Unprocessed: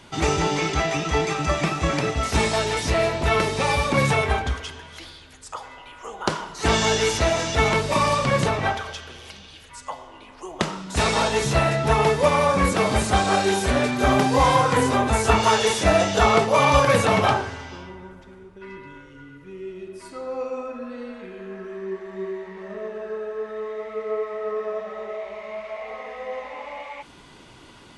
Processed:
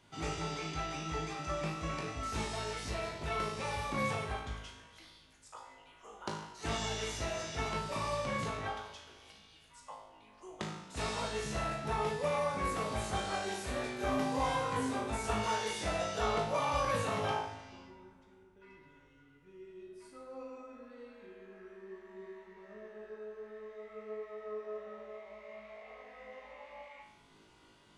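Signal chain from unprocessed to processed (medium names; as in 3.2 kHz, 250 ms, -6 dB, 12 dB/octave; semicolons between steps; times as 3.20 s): feedback comb 53 Hz, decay 0.72 s, harmonics all, mix 90%; trim -5.5 dB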